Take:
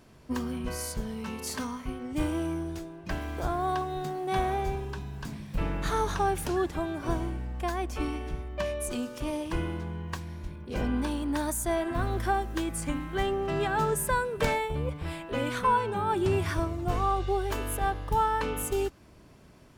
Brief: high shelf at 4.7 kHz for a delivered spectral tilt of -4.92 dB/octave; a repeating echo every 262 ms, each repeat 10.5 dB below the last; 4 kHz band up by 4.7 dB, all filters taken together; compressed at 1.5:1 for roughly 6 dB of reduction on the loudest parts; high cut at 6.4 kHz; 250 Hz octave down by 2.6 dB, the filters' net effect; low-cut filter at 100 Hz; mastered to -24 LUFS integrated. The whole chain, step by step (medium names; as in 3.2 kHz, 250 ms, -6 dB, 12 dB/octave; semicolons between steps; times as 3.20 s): high-pass 100 Hz; low-pass 6.4 kHz; peaking EQ 250 Hz -3.5 dB; peaking EQ 4 kHz +8.5 dB; treble shelf 4.7 kHz -4 dB; compression 1.5:1, threshold -38 dBFS; feedback delay 262 ms, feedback 30%, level -10.5 dB; trim +11.5 dB